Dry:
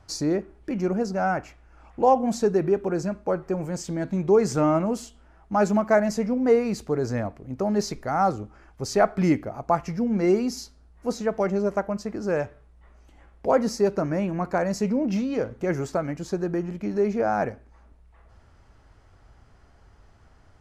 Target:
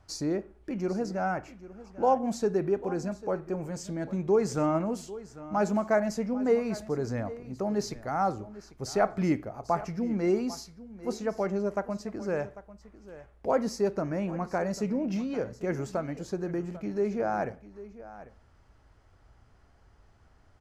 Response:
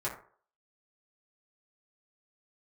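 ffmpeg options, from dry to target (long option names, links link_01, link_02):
-filter_complex "[0:a]aecho=1:1:796:0.15,asplit=2[link_01][link_02];[1:a]atrim=start_sample=2205,adelay=35[link_03];[link_02][link_03]afir=irnorm=-1:irlink=0,volume=-25dB[link_04];[link_01][link_04]amix=inputs=2:normalize=0,volume=-5.5dB"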